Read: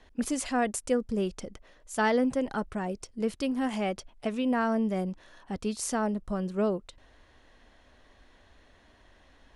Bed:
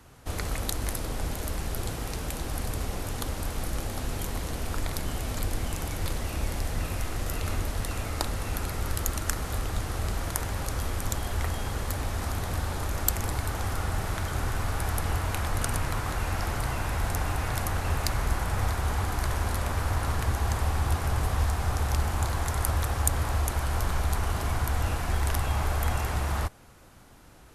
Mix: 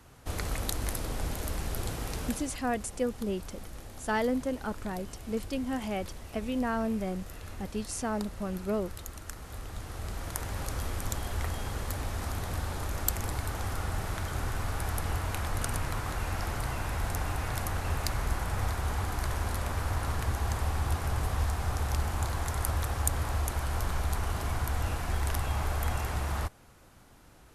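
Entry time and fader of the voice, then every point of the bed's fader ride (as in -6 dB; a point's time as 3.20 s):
2.10 s, -3.5 dB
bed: 2.26 s -2 dB
2.59 s -13 dB
9.31 s -13 dB
10.61 s -3.5 dB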